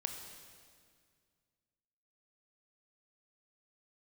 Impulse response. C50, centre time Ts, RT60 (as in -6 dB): 5.5 dB, 43 ms, 2.0 s